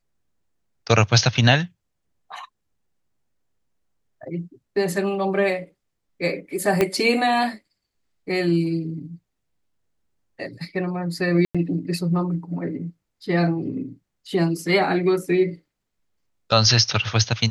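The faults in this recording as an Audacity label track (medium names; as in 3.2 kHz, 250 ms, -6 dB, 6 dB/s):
6.810000	6.810000	pop -6 dBFS
11.450000	11.550000	dropout 96 ms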